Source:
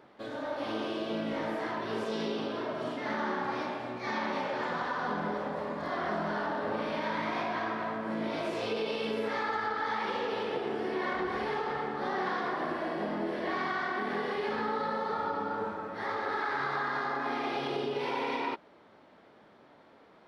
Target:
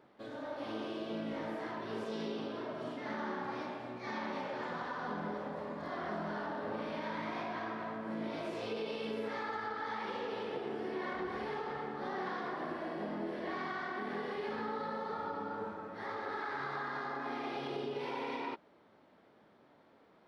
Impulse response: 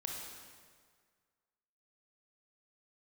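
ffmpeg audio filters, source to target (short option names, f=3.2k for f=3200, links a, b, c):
-af "equalizer=f=170:w=0.41:g=3,volume=-7.5dB"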